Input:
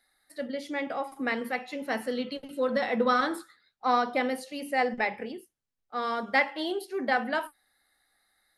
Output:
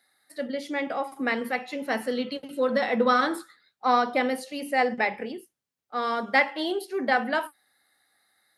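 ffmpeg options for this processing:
-af "highpass=110,volume=3dB"

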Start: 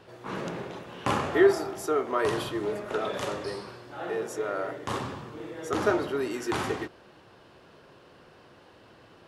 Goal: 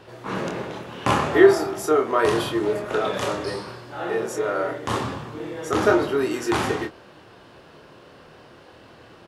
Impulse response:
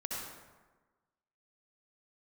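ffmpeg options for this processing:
-filter_complex "[0:a]asplit=2[a][b];[b]adelay=26,volume=-6dB[c];[a][c]amix=inputs=2:normalize=0,volume=5.5dB"

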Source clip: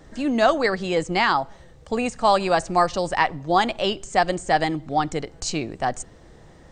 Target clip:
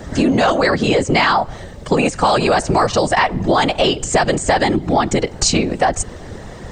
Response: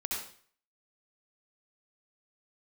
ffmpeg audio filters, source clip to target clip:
-af "afftfilt=real='hypot(re,im)*cos(2*PI*random(0))':imag='hypot(re,im)*sin(2*PI*random(1))':win_size=512:overlap=0.75,apsyclip=22dB,acompressor=threshold=-12dB:ratio=6"

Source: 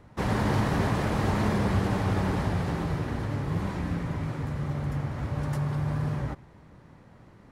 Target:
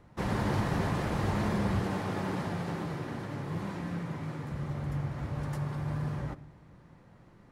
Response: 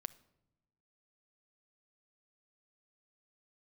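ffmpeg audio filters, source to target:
-filter_complex "[0:a]asettb=1/sr,asplit=3[a][b][c];[a]atrim=end=1.824[d];[b]atrim=start=1.82:end=4.52,asetpts=PTS-STARTPTS,afade=t=in:d=0.004:c=qsin,afade=t=out:st=2.696:d=0.004:c=qsin,highpass=140[e];[c]atrim=start=4.516[f];[d][e]acrossfade=d=0.004:c1=hsin:c2=qsin[g];[g][f]acrossfade=d=0.004:c1=qsin:c2=hsin[h];[1:a]atrim=start_sample=2205,asetrate=48510,aresample=44100[i];[h][i]afir=irnorm=-1:irlink=0"

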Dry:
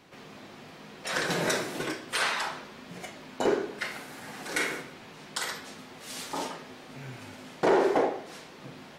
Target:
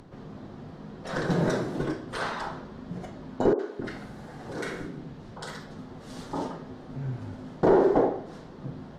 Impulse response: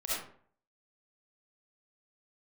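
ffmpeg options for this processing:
-filter_complex "[0:a]aemphasis=mode=reproduction:type=riaa,acompressor=mode=upward:threshold=-46dB:ratio=2.5,equalizer=f=2.4k:t=o:w=0.68:g=-10.5,asettb=1/sr,asplit=3[a][b][c];[a]atrim=end=3.534[d];[b]atrim=start=3.53:end=5.72,asetpts=PTS-STARTPTS,afade=t=in:d=0.004:c=qsin,afade=t=out:st=2.186:d=0.004:c=qsin,acrossover=split=300|1100[e][f][g];[g]adelay=60[h];[e]adelay=260[i];[i][f][h]amix=inputs=3:normalize=0,atrim=end_sample=96579[j];[c]atrim=start=5.716[k];[d][j]acrossfade=d=0.004:c1=hsin:c2=qsin[l];[l][k]acrossfade=d=0.004:c1=qsin:c2=hsin"

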